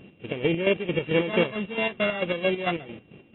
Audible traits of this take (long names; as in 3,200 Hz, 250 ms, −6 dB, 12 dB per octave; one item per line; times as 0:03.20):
a buzz of ramps at a fixed pitch in blocks of 16 samples
chopped level 4.5 Hz, depth 65%, duty 45%
AAC